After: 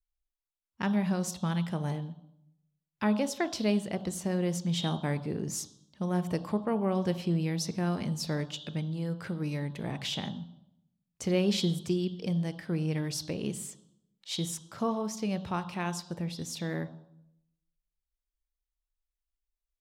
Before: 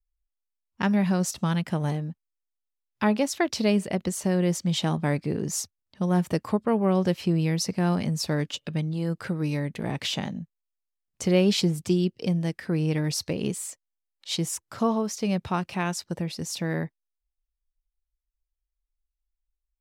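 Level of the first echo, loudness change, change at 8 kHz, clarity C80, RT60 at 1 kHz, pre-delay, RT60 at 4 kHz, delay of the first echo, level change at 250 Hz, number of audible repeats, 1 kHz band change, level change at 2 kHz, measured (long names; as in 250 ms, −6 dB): no echo audible, −5.5 dB, −6.0 dB, 17.0 dB, 0.70 s, 20 ms, 0.65 s, no echo audible, −5.5 dB, no echo audible, −5.5 dB, −6.0 dB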